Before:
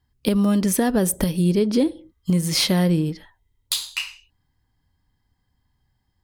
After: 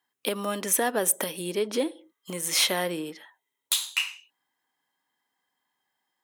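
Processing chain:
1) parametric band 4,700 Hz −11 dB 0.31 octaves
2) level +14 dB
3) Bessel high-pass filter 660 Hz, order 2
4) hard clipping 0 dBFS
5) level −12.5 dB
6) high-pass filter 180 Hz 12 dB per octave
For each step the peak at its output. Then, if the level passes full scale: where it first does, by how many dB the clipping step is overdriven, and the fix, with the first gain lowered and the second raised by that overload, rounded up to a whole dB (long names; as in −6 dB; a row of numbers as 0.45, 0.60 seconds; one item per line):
−6.0, +8.0, +6.5, 0.0, −12.5, −12.0 dBFS
step 2, 6.5 dB
step 2 +7 dB, step 5 −5.5 dB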